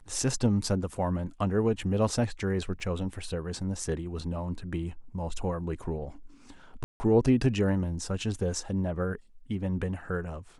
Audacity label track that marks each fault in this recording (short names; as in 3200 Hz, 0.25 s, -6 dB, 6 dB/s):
2.800000	2.800000	gap 3.5 ms
6.840000	7.000000	gap 0.16 s